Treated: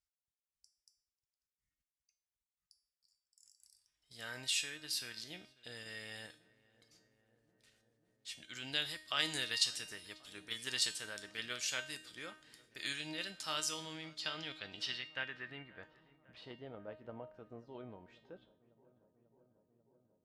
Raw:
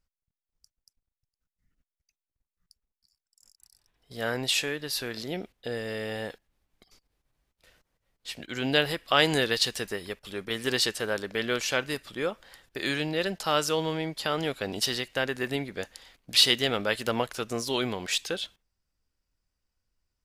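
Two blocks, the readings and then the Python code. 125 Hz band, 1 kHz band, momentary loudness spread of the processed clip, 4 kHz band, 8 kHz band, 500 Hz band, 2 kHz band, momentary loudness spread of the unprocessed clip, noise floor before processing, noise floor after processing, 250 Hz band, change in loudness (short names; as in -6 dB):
-18.0 dB, -16.5 dB, 19 LU, -11.0 dB, -7.5 dB, -21.5 dB, -12.0 dB, 13 LU, under -85 dBFS, under -85 dBFS, -19.0 dB, -11.5 dB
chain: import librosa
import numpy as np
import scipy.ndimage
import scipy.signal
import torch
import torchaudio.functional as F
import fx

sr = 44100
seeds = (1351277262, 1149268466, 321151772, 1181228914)

p1 = scipy.signal.sosfilt(scipy.signal.butter(2, 41.0, 'highpass', fs=sr, output='sos'), x)
p2 = fx.tone_stack(p1, sr, knobs='5-5-5')
p3 = fx.level_steps(p2, sr, step_db=10)
p4 = p2 + F.gain(torch.from_numpy(p3), -0.5).numpy()
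p5 = fx.filter_sweep_lowpass(p4, sr, from_hz=9000.0, to_hz=600.0, start_s=13.73, end_s=16.63, q=1.3)
p6 = fx.comb_fb(p5, sr, f0_hz=310.0, decay_s=0.48, harmonics='all', damping=0.0, mix_pct=80)
p7 = p6 + fx.echo_filtered(p6, sr, ms=542, feedback_pct=83, hz=1500.0, wet_db=-21.0, dry=0)
y = F.gain(torch.from_numpy(p7), 6.5).numpy()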